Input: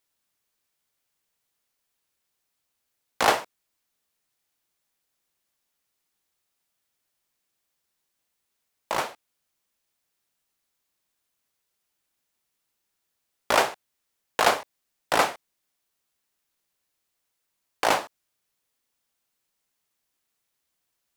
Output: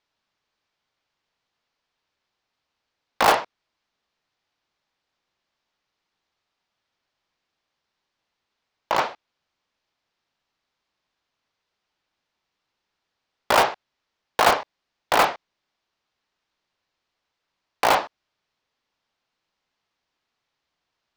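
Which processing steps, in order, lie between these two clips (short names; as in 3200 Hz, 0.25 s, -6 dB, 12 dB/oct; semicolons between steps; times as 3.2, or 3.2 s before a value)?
LPF 5100 Hz 24 dB/oct; bell 930 Hz +3.5 dB 1.2 oct; in parallel at -6.5 dB: wrapped overs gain 13 dB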